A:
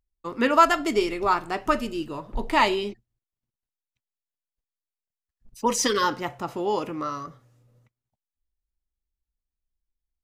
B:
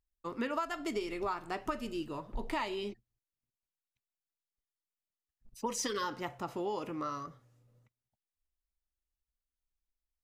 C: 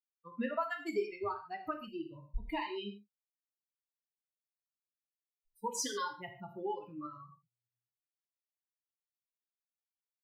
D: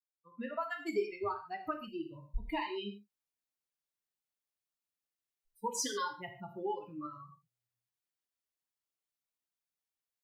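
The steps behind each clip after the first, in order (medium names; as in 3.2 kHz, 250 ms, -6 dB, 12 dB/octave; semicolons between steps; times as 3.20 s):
compression 8:1, threshold -25 dBFS, peak gain reduction 14.5 dB; trim -6.5 dB
expander on every frequency bin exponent 3; gated-style reverb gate 170 ms falling, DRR 3.5 dB; trim +2 dB
fade-in on the opening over 0.89 s; trim +1 dB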